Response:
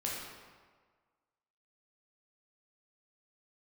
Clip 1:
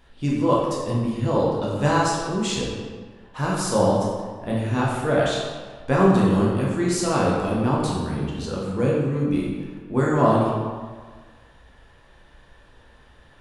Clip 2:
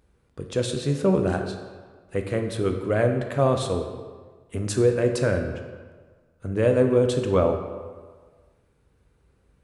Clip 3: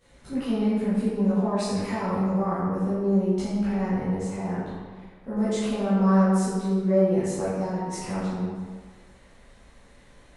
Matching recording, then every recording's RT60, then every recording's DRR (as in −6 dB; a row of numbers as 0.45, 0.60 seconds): 1; 1.6, 1.5, 1.6 seconds; −5.0, 4.5, −14.5 decibels